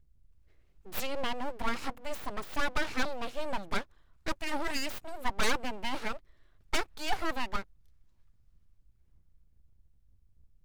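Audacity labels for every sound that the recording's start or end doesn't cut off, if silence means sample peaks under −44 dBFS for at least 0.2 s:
0.860000	3.830000	sound
4.260000	6.170000	sound
6.730000	7.630000	sound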